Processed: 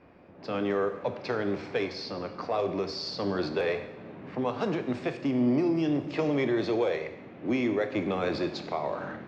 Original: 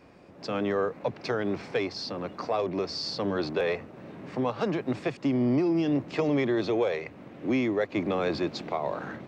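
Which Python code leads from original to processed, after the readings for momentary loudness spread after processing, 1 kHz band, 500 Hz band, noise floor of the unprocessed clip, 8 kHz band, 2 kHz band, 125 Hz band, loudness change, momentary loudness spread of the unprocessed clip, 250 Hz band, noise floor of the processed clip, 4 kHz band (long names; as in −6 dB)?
9 LU, −1.0 dB, −0.5 dB, −50 dBFS, can't be measured, −0.5 dB, −1.5 dB, −1.0 dB, 10 LU, −1.0 dB, −48 dBFS, −2.0 dB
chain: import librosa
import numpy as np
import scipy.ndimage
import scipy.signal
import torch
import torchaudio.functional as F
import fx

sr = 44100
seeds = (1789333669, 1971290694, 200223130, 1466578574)

y = fx.env_lowpass(x, sr, base_hz=2600.0, full_db=-22.0)
y = fx.rev_plate(y, sr, seeds[0], rt60_s=0.98, hf_ratio=0.95, predelay_ms=0, drr_db=7.0)
y = F.gain(torch.from_numpy(y), -1.5).numpy()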